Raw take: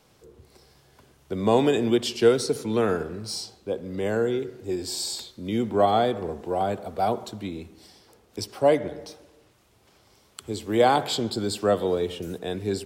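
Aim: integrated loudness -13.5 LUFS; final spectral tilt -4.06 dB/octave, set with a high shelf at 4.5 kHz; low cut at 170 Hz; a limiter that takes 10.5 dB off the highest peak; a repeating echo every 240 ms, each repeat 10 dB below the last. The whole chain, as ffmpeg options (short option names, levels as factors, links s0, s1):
-af "highpass=170,highshelf=f=4500:g=-8,alimiter=limit=0.126:level=0:latency=1,aecho=1:1:240|480|720|960:0.316|0.101|0.0324|0.0104,volume=5.96"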